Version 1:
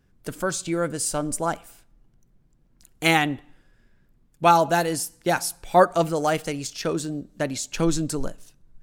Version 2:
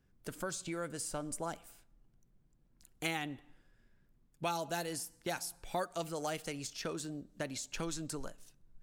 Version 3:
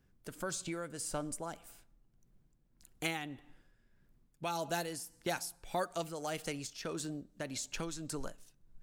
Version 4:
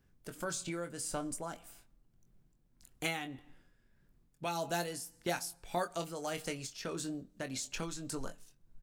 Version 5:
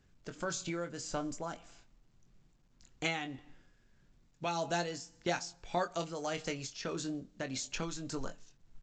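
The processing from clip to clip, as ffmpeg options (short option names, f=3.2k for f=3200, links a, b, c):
-filter_complex "[0:a]acrossover=split=710|2400[a][b][c];[a]acompressor=threshold=-31dB:ratio=4[d];[b]acompressor=threshold=-34dB:ratio=4[e];[c]acompressor=threshold=-31dB:ratio=4[f];[d][e][f]amix=inputs=3:normalize=0,volume=-8.5dB"
-af "tremolo=f=1.7:d=0.44,volume=2dB"
-filter_complex "[0:a]asplit=2[a][b];[b]adelay=23,volume=-8dB[c];[a][c]amix=inputs=2:normalize=0"
-af "volume=1.5dB" -ar 16000 -c:a pcm_mulaw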